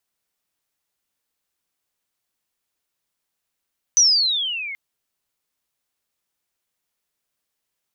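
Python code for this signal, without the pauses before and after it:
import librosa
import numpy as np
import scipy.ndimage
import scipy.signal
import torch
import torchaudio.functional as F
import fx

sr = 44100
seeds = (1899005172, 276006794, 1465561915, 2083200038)

y = fx.chirp(sr, length_s=0.78, from_hz=6100.0, to_hz=2100.0, law='logarithmic', from_db=-10.0, to_db=-28.5)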